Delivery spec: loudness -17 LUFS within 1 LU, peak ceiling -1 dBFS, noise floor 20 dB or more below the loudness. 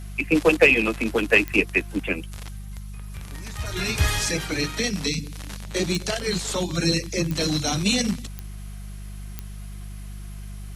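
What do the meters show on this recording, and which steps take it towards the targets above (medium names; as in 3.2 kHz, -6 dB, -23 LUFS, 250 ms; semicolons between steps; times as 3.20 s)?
clicks found 5; hum 50 Hz; highest harmonic 200 Hz; hum level -33 dBFS; loudness -22.5 LUFS; peak level -5.5 dBFS; loudness target -17.0 LUFS
-> de-click; de-hum 50 Hz, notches 4; trim +5.5 dB; peak limiter -1 dBFS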